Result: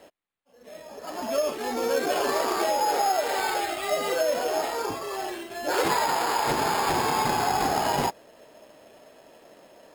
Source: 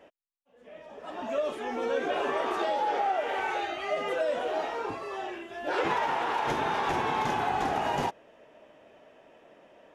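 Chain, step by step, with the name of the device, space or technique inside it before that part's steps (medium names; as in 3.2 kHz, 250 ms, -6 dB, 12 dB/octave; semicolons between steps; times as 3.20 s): crushed at another speed (playback speed 0.5×; sample-and-hold 15×; playback speed 2×); trim +4 dB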